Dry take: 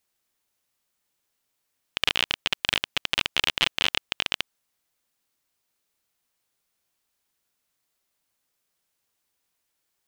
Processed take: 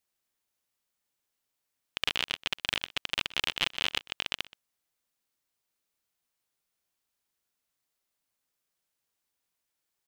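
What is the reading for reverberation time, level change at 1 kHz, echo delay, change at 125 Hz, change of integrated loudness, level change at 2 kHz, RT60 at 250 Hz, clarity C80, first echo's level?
no reverb audible, −6.0 dB, 125 ms, −6.0 dB, −6.0 dB, −6.0 dB, no reverb audible, no reverb audible, −20.0 dB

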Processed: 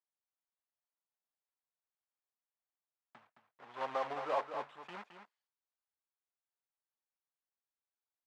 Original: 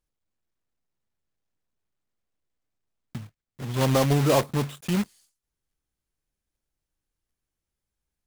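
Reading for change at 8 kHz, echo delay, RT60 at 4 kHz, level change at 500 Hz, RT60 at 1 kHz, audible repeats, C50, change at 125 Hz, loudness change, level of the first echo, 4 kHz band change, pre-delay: below −30 dB, 217 ms, no reverb audible, −14.5 dB, no reverb audible, 1, no reverb audible, −39.5 dB, −15.5 dB, −8.5 dB, −20.0 dB, no reverb audible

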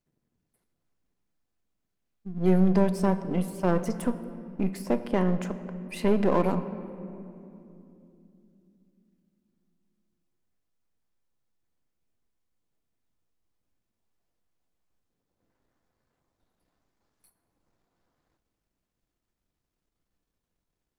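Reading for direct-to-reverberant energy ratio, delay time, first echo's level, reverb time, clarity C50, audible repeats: 10.0 dB, no echo audible, no echo audible, 2.9 s, 12.0 dB, no echo audible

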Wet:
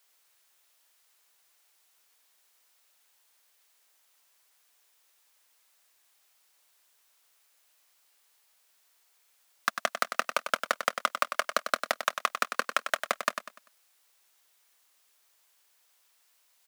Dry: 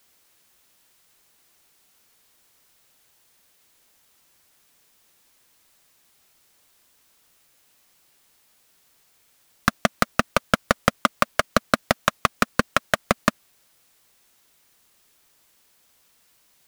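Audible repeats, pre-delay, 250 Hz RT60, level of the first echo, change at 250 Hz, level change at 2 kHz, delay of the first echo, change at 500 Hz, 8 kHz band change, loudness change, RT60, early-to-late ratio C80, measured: 3, no reverb audible, no reverb audible, −8.5 dB, −22.0 dB, −6.0 dB, 98 ms, −9.0 dB, −6.0 dB, −7.0 dB, no reverb audible, no reverb audible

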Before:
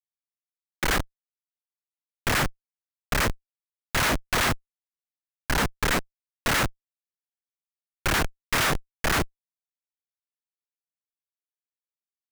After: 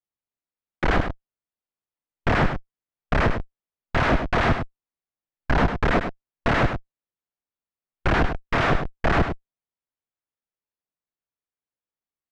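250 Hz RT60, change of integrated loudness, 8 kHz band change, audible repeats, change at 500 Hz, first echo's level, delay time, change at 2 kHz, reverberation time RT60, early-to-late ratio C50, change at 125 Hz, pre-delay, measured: no reverb audible, +2.0 dB, −17.5 dB, 1, +6.5 dB, −8.0 dB, 102 ms, +0.5 dB, no reverb audible, no reverb audible, +6.5 dB, no reverb audible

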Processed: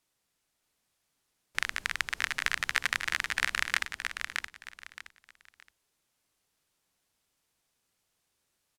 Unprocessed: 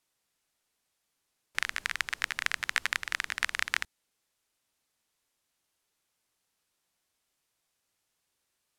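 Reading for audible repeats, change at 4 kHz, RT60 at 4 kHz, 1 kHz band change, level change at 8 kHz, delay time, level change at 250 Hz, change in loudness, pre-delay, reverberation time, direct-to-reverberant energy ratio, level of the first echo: 3, +1.5 dB, no reverb audible, +1.5 dB, +1.5 dB, 620 ms, +4.0 dB, +0.5 dB, no reverb audible, no reverb audible, no reverb audible, −5.0 dB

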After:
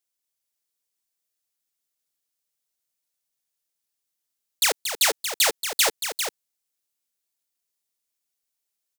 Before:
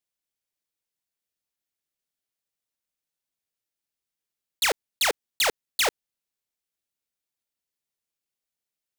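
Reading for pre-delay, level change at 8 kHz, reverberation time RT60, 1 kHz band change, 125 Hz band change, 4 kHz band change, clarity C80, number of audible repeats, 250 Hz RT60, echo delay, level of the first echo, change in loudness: no reverb audible, +6.5 dB, no reverb audible, +0.5 dB, can't be measured, +3.5 dB, no reverb audible, 2, no reverb audible, 231 ms, −8.5 dB, +3.0 dB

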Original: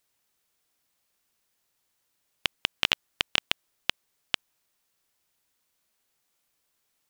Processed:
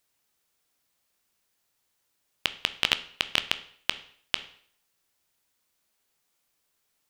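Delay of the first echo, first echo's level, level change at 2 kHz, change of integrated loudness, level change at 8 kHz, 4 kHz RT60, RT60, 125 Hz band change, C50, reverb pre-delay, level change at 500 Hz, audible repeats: no echo audible, no echo audible, +0.5 dB, +0.5 dB, 0.0 dB, 0.55 s, 0.55 s, 0.0 dB, 15.5 dB, 12 ms, 0.0 dB, no echo audible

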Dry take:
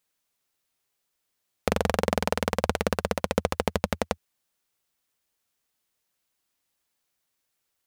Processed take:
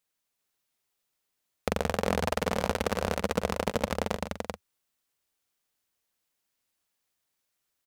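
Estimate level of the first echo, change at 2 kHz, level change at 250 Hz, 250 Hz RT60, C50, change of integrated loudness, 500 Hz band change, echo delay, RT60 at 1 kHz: −19.0 dB, −2.0 dB, −2.0 dB, no reverb audible, no reverb audible, −2.5 dB, −2.0 dB, 114 ms, no reverb audible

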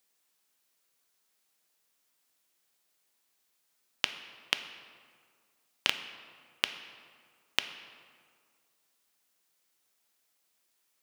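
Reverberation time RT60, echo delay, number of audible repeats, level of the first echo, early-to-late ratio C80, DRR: 1.9 s, no echo audible, no echo audible, no echo audible, 12.0 dB, 8.5 dB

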